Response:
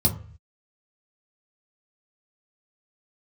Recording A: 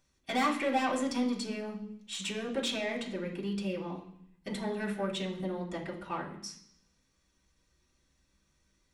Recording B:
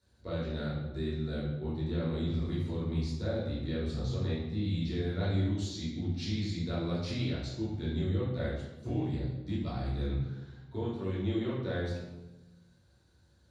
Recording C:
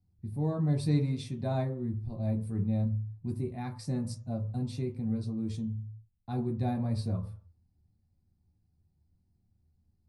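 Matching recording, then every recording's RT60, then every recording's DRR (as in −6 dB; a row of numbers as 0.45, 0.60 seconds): C; 0.65, 1.1, 0.45 seconds; −4.5, −10.5, −0.5 decibels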